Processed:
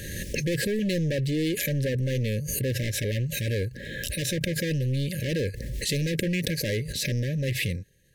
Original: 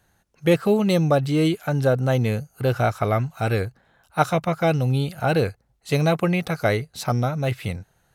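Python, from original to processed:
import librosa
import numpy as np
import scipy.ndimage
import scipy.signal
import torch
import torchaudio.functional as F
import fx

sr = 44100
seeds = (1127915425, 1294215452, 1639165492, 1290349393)

y = np.clip(10.0 ** (24.0 / 20.0) * x, -1.0, 1.0) / 10.0 ** (24.0 / 20.0)
y = fx.brickwall_bandstop(y, sr, low_hz=600.0, high_hz=1600.0)
y = fx.pre_swell(y, sr, db_per_s=27.0)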